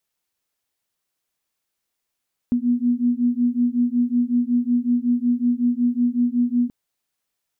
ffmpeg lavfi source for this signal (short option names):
-f lavfi -i "aevalsrc='0.1*(sin(2*PI*240*t)+sin(2*PI*245.4*t))':d=4.18:s=44100"